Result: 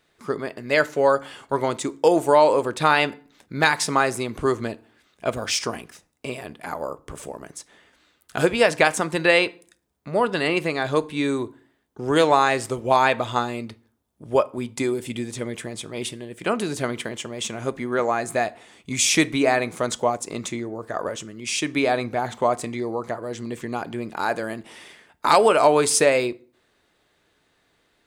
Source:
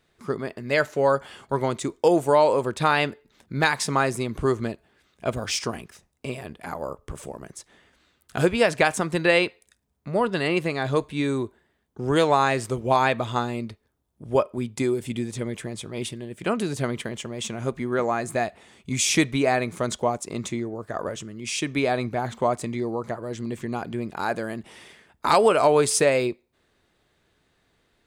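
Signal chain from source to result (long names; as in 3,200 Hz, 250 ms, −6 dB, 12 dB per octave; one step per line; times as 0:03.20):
low-shelf EQ 200 Hz −8.5 dB
feedback delay network reverb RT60 0.46 s, low-frequency decay 1.3×, high-frequency decay 0.7×, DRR 16.5 dB
level +3 dB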